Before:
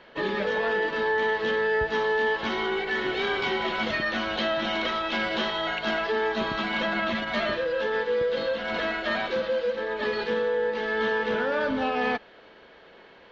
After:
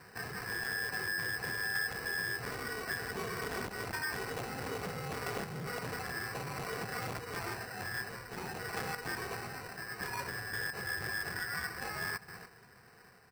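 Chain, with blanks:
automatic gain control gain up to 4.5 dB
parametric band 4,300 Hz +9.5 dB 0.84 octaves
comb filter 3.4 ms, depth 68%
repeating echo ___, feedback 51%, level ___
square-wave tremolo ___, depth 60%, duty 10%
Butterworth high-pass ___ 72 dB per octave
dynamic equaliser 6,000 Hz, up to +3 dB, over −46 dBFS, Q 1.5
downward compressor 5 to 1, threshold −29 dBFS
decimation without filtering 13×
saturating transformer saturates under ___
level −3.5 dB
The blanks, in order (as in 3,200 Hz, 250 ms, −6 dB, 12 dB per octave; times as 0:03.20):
200 ms, −24 dB, 0.57 Hz, 1,200 Hz, 1,100 Hz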